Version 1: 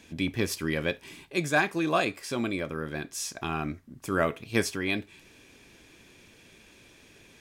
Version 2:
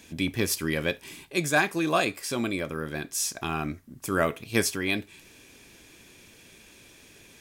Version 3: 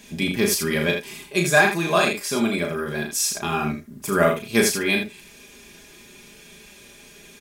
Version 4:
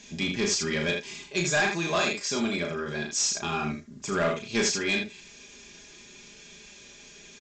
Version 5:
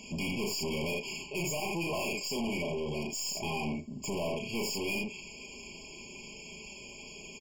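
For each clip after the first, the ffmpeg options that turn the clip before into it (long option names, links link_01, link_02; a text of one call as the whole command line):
ffmpeg -i in.wav -af "highshelf=frequency=7100:gain=10,volume=1dB" out.wav
ffmpeg -i in.wav -filter_complex "[0:a]aecho=1:1:4.9:0.72,asplit=2[link_01][link_02];[link_02]aecho=0:1:35|79:0.562|0.447[link_03];[link_01][link_03]amix=inputs=2:normalize=0,volume=2.5dB" out.wav
ffmpeg -i in.wav -af "highshelf=frequency=4200:gain=9.5,aresample=16000,asoftclip=type=tanh:threshold=-14dB,aresample=44100,volume=-5dB" out.wav
ffmpeg -i in.wav -af "aeval=exprs='(tanh(63.1*val(0)+0.15)-tanh(0.15))/63.1':channel_layout=same,afftfilt=real='re*eq(mod(floor(b*sr/1024/1100),2),0)':imag='im*eq(mod(floor(b*sr/1024/1100),2),0)':win_size=1024:overlap=0.75,volume=5dB" out.wav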